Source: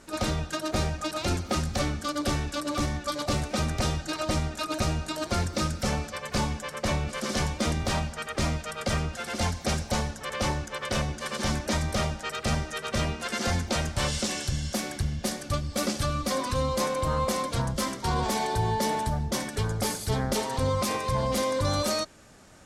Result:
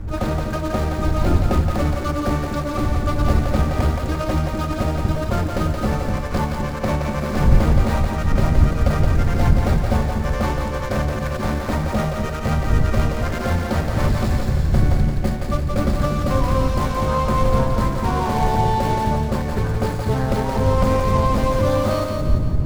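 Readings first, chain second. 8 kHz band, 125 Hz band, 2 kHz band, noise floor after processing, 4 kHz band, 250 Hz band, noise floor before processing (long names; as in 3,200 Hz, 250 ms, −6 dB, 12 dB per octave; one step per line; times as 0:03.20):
−5.0 dB, +11.0 dB, +3.5 dB, −25 dBFS, −3.0 dB, +9.0 dB, −42 dBFS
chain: running median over 15 samples
wind on the microphone 86 Hz −29 dBFS
echo with a time of its own for lows and highs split 430 Hz, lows 241 ms, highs 172 ms, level −4 dB
level +6 dB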